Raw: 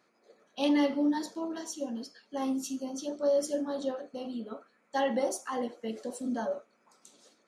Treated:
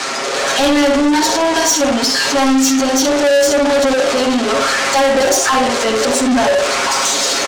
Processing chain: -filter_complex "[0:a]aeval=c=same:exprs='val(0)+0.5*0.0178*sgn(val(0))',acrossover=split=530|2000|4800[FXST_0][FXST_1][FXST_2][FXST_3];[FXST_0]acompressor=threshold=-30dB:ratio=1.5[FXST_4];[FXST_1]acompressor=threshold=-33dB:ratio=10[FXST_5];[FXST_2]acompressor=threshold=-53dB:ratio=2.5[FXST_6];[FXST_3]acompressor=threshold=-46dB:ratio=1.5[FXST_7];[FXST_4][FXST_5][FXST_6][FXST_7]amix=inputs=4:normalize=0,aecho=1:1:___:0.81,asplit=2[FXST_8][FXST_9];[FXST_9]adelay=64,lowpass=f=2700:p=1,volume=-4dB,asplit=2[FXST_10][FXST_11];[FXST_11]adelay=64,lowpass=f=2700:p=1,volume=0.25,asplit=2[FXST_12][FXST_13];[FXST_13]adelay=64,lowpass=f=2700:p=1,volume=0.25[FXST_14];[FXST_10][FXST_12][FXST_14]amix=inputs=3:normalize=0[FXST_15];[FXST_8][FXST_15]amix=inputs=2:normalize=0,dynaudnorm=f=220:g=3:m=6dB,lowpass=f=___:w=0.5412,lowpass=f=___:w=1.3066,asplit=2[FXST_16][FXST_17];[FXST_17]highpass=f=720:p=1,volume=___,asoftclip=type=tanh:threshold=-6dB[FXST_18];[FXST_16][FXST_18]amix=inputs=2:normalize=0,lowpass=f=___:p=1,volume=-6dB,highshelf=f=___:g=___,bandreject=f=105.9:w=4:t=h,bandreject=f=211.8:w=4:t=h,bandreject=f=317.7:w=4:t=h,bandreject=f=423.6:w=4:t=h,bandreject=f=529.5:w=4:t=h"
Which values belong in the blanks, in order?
7.4, 7800, 7800, 26dB, 5300, 4700, 10